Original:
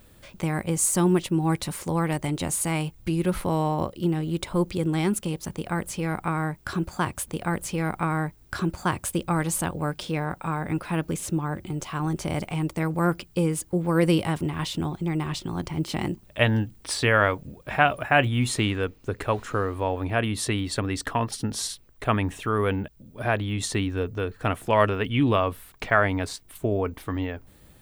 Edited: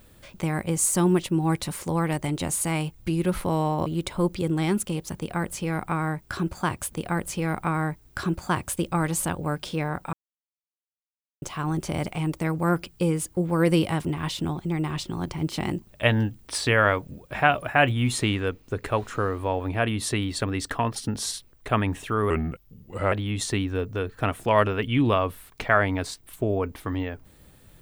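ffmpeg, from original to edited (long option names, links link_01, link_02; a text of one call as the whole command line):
ffmpeg -i in.wav -filter_complex "[0:a]asplit=6[link_01][link_02][link_03][link_04][link_05][link_06];[link_01]atrim=end=3.862[link_07];[link_02]atrim=start=4.218:end=10.49,asetpts=PTS-STARTPTS,afade=type=out:start_time=6.268:duration=0.004:curve=hsin[link_08];[link_03]atrim=start=10.49:end=11.78,asetpts=PTS-STARTPTS,volume=0[link_09];[link_04]atrim=start=11.78:end=22.664,asetpts=PTS-STARTPTS,afade=type=in:duration=0.004:curve=hsin[link_10];[link_05]atrim=start=22.66:end=23.34,asetpts=PTS-STARTPTS,asetrate=36603,aresample=44100,atrim=end_sample=36130,asetpts=PTS-STARTPTS[link_11];[link_06]atrim=start=23.336[link_12];[link_08][link_09][link_10]concat=n=3:v=0:a=1[link_13];[link_07][link_13]acrossfade=duration=0.004:curve1=hsin:curve2=hsin[link_14];[link_14][link_11]acrossfade=duration=0.004:curve1=hsin:curve2=hsin[link_15];[link_15][link_12]acrossfade=duration=0.004:curve1=hsin:curve2=hsin" out.wav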